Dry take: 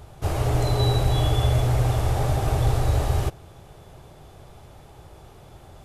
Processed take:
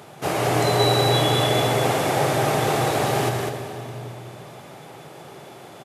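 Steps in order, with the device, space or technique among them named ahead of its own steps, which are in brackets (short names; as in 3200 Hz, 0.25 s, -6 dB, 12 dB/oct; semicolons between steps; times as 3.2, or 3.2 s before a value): PA in a hall (HPF 150 Hz 24 dB/oct; bell 2100 Hz +4 dB 0.88 oct; echo 0.199 s -4.5 dB; reverb RT60 3.4 s, pre-delay 86 ms, DRR 7.5 dB); HPF 96 Hz; gain +6 dB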